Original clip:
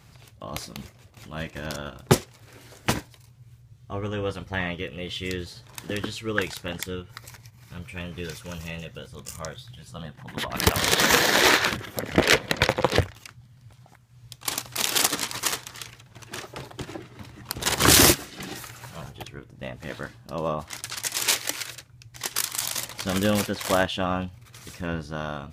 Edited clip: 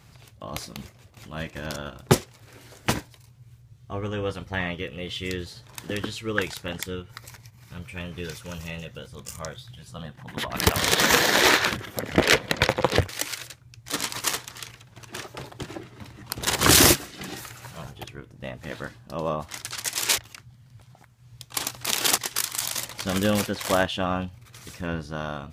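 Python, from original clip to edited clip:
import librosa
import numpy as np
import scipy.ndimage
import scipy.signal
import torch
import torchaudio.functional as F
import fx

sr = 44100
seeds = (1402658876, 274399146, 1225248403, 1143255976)

y = fx.edit(x, sr, fx.swap(start_s=13.09, length_s=2.0, other_s=21.37, other_length_s=0.81), tone=tone)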